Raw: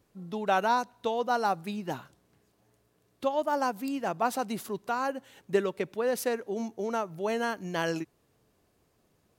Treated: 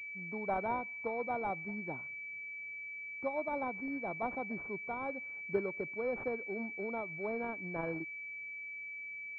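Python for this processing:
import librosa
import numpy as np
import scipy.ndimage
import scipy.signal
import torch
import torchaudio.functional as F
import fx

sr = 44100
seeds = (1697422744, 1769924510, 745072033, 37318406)

y = fx.pwm(x, sr, carrier_hz=2300.0)
y = y * 10.0 ** (-7.5 / 20.0)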